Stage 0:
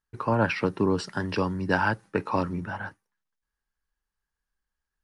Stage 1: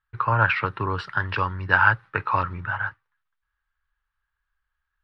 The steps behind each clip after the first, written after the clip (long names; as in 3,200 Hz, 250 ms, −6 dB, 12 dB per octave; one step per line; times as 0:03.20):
drawn EQ curve 130 Hz 0 dB, 200 Hz −18 dB, 740 Hz −6 dB, 1,300 Hz +7 dB, 1,900 Hz +2 dB, 3,700 Hz −2 dB, 6,700 Hz −24 dB
level +5 dB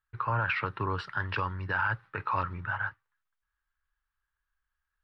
brickwall limiter −13.5 dBFS, peak gain reduction 10 dB
level −5 dB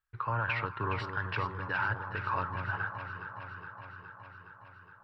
delay that swaps between a low-pass and a high-pass 208 ms, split 1,200 Hz, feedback 83%, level −7 dB
level −3 dB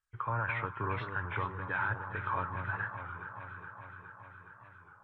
hearing-aid frequency compression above 2,000 Hz 1.5 to 1
wow of a warped record 33 1/3 rpm, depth 100 cents
level −1.5 dB